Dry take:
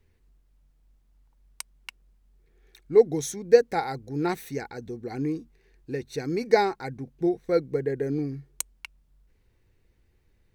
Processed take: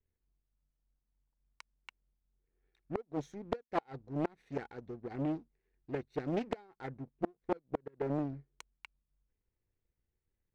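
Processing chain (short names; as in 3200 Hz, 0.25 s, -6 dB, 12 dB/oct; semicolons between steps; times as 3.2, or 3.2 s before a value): Bessel low-pass 2200 Hz, order 2; power-law curve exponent 1.4; flipped gate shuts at -21 dBFS, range -31 dB; Doppler distortion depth 0.79 ms; gain +2.5 dB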